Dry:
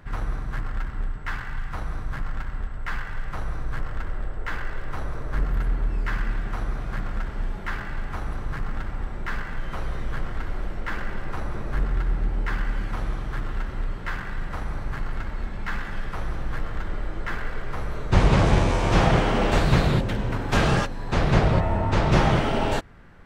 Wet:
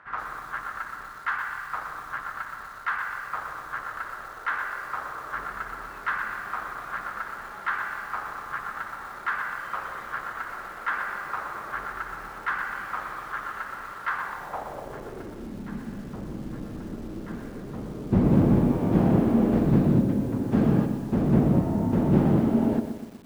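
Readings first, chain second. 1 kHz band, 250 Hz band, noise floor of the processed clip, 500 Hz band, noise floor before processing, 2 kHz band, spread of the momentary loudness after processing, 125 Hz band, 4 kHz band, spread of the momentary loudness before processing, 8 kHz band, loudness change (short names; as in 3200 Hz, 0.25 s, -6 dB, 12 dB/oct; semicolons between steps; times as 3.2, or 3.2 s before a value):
-1.0 dB, +5.0 dB, -41 dBFS, -2.5 dB, -33 dBFS, +0.5 dB, 15 LU, -2.5 dB, -13.0 dB, 13 LU, n/a, -0.5 dB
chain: self-modulated delay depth 0.31 ms; band-pass sweep 1300 Hz -> 240 Hz, 14.05–15.65; lo-fi delay 0.122 s, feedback 55%, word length 9-bit, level -8.5 dB; gain +8.5 dB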